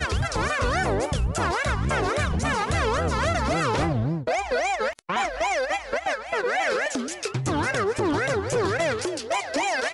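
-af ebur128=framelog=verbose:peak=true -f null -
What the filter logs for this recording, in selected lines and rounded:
Integrated loudness:
  I:         -25.0 LUFS
  Threshold: -35.0 LUFS
Loudness range:
  LRA:         1.4 LU
  Threshold: -45.0 LUFS
  LRA low:   -25.7 LUFS
  LRA high:  -24.3 LUFS
True peak:
  Peak:      -16.1 dBFS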